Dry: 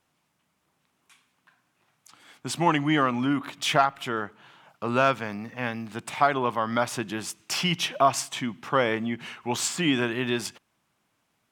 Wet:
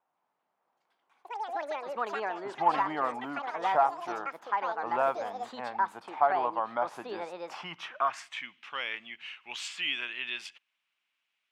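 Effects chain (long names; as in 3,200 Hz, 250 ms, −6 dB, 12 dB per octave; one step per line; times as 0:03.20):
delay with pitch and tempo change per echo 128 ms, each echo +6 semitones, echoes 3
band-pass filter sweep 820 Hz → 2,700 Hz, 0:07.51–0:08.56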